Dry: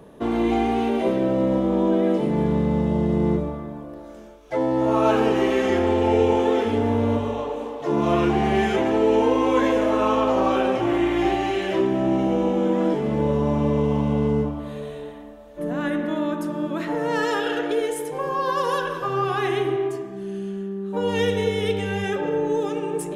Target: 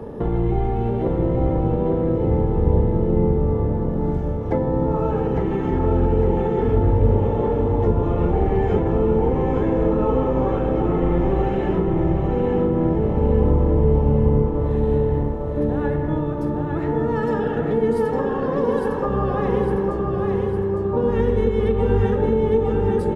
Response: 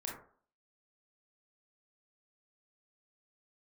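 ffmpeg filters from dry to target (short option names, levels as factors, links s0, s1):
-filter_complex "[0:a]asplit=2[s0][s1];[1:a]atrim=start_sample=2205[s2];[s1][s2]afir=irnorm=-1:irlink=0,volume=0.299[s3];[s0][s3]amix=inputs=2:normalize=0,alimiter=limit=0.282:level=0:latency=1:release=194,acrossover=split=130[s4][s5];[s5]acompressor=threshold=0.0178:ratio=4[s6];[s4][s6]amix=inputs=2:normalize=0,firequalizer=gain_entry='entry(220,0);entry(440,10);entry(2700,-2);entry(4600,-5)':delay=0.05:min_phase=1,asplit=2[s7][s8];[s8]asetrate=22050,aresample=44100,atempo=2,volume=0.891[s9];[s7][s9]amix=inputs=2:normalize=0,bass=f=250:g=7,treble=f=4000:g=-3,aecho=1:1:2.3:0.46,aecho=1:1:856|1712|2568|3424|4280|5136|5992:0.631|0.322|0.164|0.0837|0.0427|0.0218|0.0111"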